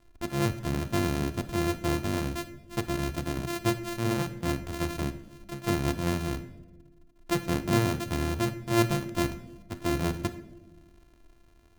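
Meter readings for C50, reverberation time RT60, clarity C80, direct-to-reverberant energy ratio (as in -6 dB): 13.0 dB, 1.1 s, 15.5 dB, 11.0 dB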